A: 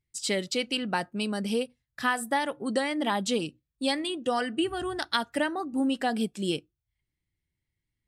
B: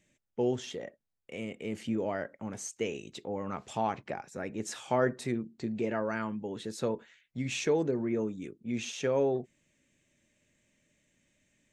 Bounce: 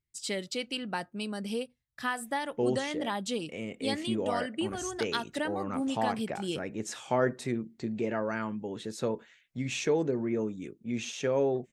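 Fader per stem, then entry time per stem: -5.5 dB, +0.5 dB; 0.00 s, 2.20 s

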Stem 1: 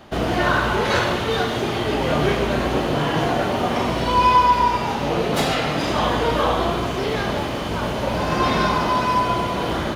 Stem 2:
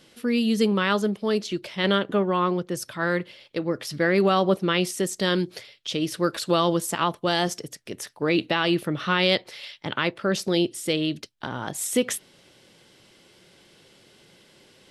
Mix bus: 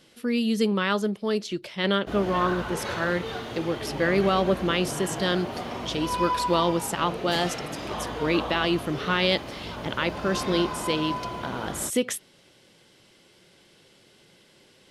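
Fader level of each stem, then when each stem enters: -12.5 dB, -2.0 dB; 1.95 s, 0.00 s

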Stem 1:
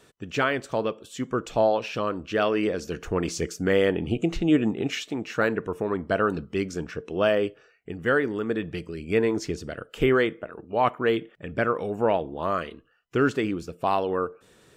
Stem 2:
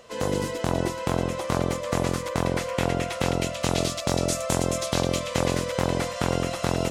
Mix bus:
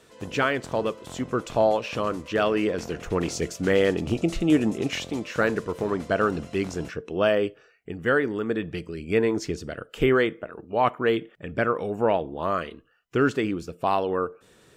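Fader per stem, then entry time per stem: +0.5 dB, -16.5 dB; 0.00 s, 0.00 s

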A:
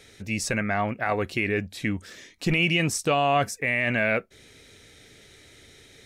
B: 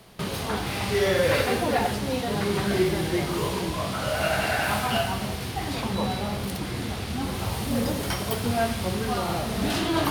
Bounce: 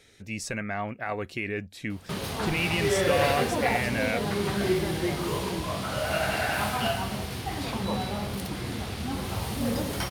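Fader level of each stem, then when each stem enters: -6.0 dB, -2.5 dB; 0.00 s, 1.90 s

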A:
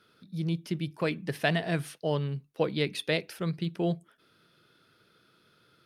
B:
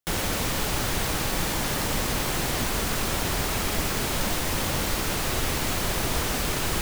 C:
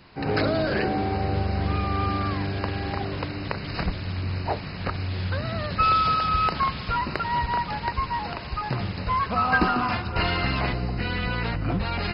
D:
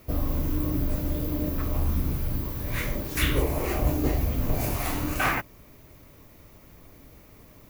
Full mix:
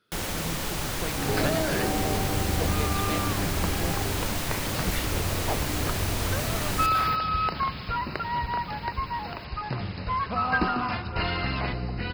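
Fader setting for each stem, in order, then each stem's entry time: -7.0 dB, -4.0 dB, -3.5 dB, -8.5 dB; 0.00 s, 0.05 s, 1.00 s, 1.75 s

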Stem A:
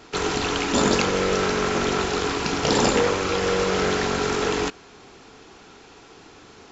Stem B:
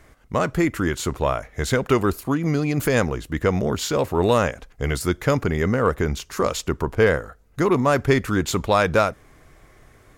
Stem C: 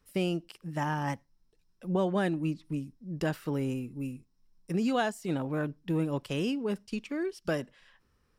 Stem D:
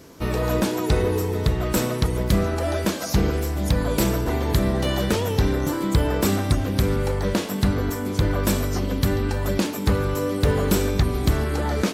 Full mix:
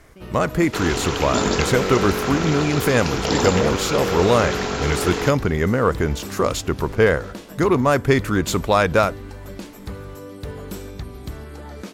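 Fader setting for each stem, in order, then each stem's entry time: -1.0 dB, +1.5 dB, -16.0 dB, -12.5 dB; 0.60 s, 0.00 s, 0.00 s, 0.00 s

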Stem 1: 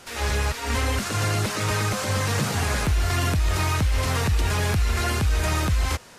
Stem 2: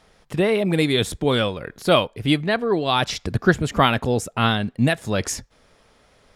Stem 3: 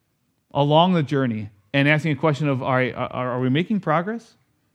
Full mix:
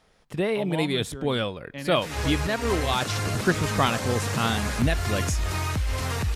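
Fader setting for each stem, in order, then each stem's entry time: -4.5 dB, -6.0 dB, -18.0 dB; 1.95 s, 0.00 s, 0.00 s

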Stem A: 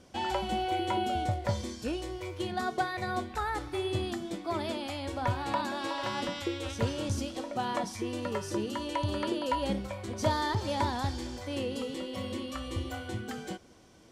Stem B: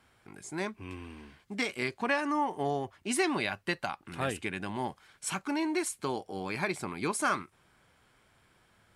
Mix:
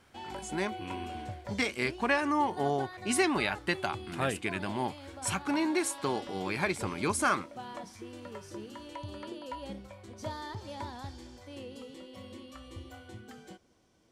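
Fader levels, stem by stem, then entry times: -10.5 dB, +1.5 dB; 0.00 s, 0.00 s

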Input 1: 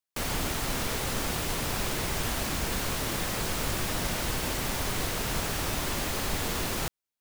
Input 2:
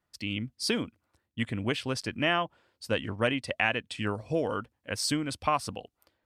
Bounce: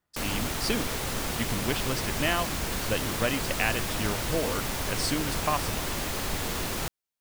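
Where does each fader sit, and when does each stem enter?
-0.5 dB, -1.0 dB; 0.00 s, 0.00 s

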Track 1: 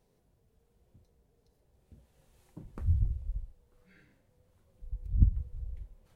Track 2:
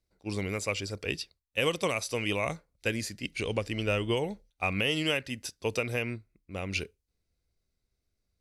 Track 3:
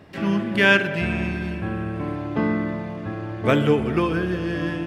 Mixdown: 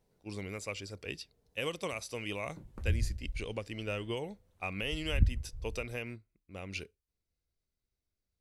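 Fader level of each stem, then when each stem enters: -3.0 dB, -8.0 dB, mute; 0.00 s, 0.00 s, mute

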